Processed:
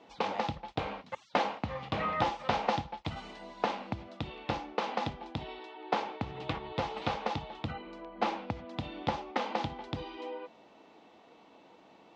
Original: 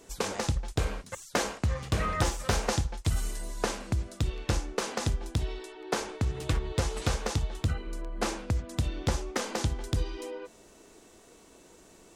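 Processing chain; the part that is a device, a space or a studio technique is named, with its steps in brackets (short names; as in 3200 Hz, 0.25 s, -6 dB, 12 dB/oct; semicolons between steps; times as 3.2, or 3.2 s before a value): kitchen radio (speaker cabinet 190–3700 Hz, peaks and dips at 390 Hz -8 dB, 830 Hz +8 dB, 1600 Hz -6 dB)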